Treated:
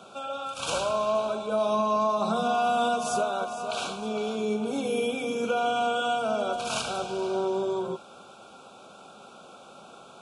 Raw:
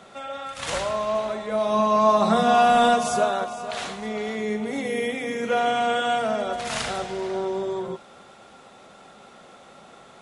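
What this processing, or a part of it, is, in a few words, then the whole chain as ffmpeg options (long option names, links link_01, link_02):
PA system with an anti-feedback notch: -af "highpass=frequency=130:poles=1,asuperstop=centerf=1900:order=20:qfactor=2.8,alimiter=limit=-17dB:level=0:latency=1:release=395"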